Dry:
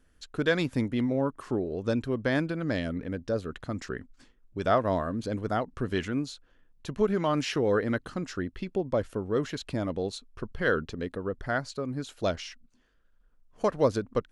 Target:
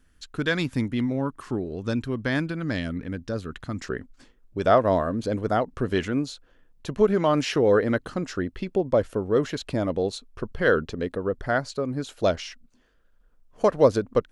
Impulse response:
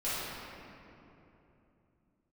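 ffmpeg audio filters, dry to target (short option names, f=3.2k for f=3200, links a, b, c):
-af "asetnsamples=n=441:p=0,asendcmd='3.84 equalizer g 3.5',equalizer=f=540:t=o:w=1.2:g=-6.5,volume=3.5dB"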